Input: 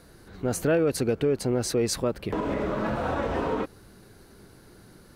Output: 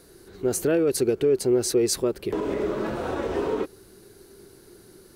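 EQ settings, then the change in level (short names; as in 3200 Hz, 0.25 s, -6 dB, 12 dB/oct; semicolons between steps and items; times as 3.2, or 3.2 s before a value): bell 380 Hz +13.5 dB 0.49 oct; high shelf 3700 Hz +11 dB; -4.5 dB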